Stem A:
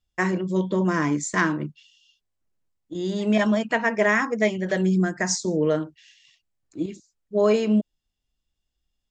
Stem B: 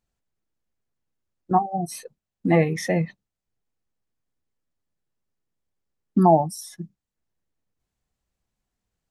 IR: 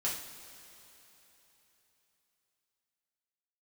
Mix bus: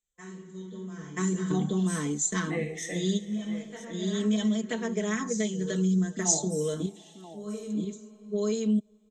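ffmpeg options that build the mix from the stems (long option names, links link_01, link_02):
-filter_complex "[0:a]equalizer=frequency=2000:width=0.42:gain=-8,aecho=1:1:4.6:0.79,volume=-1dB,asplit=3[link_01][link_02][link_03];[link_02]volume=-21dB[link_04];[link_03]volume=-4dB[link_05];[1:a]equalizer=frequency=125:width_type=o:width=1:gain=-6,equalizer=frequency=250:width_type=o:width=1:gain=-4,equalizer=frequency=500:width_type=o:width=1:gain=5,equalizer=frequency=1000:width_type=o:width=1:gain=-4,equalizer=frequency=2000:width_type=o:width=1:gain=7,equalizer=frequency=4000:width_type=o:width=1:gain=-4,equalizer=frequency=8000:width_type=o:width=1:gain=9,volume=-17.5dB,asplit=4[link_06][link_07][link_08][link_09];[link_07]volume=-5dB[link_10];[link_08]volume=-9.5dB[link_11];[link_09]apad=whole_len=401739[link_12];[link_01][link_12]sidechaingate=range=-33dB:threshold=-58dB:ratio=16:detection=peak[link_13];[2:a]atrim=start_sample=2205[link_14];[link_04][link_10]amix=inputs=2:normalize=0[link_15];[link_15][link_14]afir=irnorm=-1:irlink=0[link_16];[link_05][link_11]amix=inputs=2:normalize=0,aecho=0:1:984:1[link_17];[link_13][link_06][link_16][link_17]amix=inputs=4:normalize=0,superequalizer=8b=0.447:9b=0.501:13b=3.16:15b=2.82:16b=0.562,acrossover=split=170|3000[link_18][link_19][link_20];[link_19]acompressor=threshold=-27dB:ratio=6[link_21];[link_18][link_21][link_20]amix=inputs=3:normalize=0"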